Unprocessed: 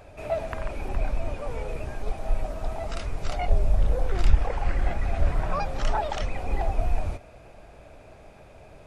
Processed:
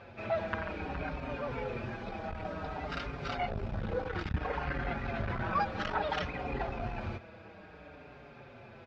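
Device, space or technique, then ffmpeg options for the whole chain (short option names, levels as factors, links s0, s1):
barber-pole flanger into a guitar amplifier: -filter_complex "[0:a]asplit=2[s0][s1];[s1]adelay=5.4,afreqshift=-0.58[s2];[s0][s2]amix=inputs=2:normalize=1,asoftclip=type=tanh:threshold=0.1,highpass=100,equalizer=f=220:t=q:w=4:g=4,equalizer=f=650:t=q:w=4:g=-6,equalizer=f=1500:t=q:w=4:g=6,lowpass=f=4500:w=0.5412,lowpass=f=4500:w=1.3066,volume=1.41"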